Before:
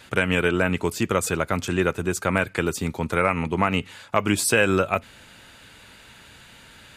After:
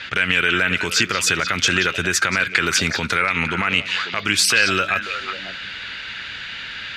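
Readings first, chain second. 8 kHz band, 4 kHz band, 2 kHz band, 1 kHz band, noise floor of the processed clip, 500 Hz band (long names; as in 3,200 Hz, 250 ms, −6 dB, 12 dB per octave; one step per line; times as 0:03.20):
+7.0 dB, +13.0 dB, +8.5 dB, +2.0 dB, −33 dBFS, −5.0 dB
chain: downward compressor 12 to 1, threshold −24 dBFS, peak gain reduction 11 dB
low-pass that shuts in the quiet parts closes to 3,000 Hz, open at −24.5 dBFS
high-shelf EQ 9,000 Hz +8 dB
echo through a band-pass that steps 180 ms, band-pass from 3,700 Hz, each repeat −1.4 octaves, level −6 dB
brickwall limiter −19 dBFS, peak gain reduction 10 dB
flat-topped bell 2,900 Hz +14 dB 2.5 octaves
level +5 dB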